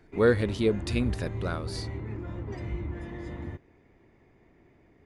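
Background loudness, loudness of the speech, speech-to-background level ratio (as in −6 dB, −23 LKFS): −37.0 LKFS, −28.0 LKFS, 9.0 dB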